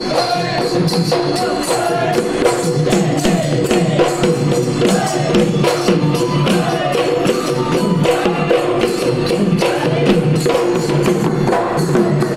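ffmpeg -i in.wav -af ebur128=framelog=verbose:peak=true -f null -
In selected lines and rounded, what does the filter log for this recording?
Integrated loudness:
  I:         -15.0 LUFS
  Threshold: -25.0 LUFS
Loudness range:
  LRA:         0.8 LU
  Threshold: -34.9 LUFS
  LRA low:   -15.3 LUFS
  LRA high:  -14.5 LUFS
True peak:
  Peak:       -3.8 dBFS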